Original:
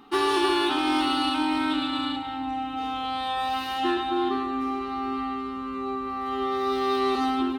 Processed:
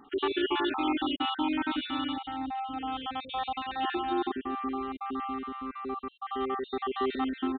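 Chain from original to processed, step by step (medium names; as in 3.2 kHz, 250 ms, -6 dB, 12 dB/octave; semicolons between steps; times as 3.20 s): random holes in the spectrogram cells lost 39%; resampled via 8 kHz; trim -3 dB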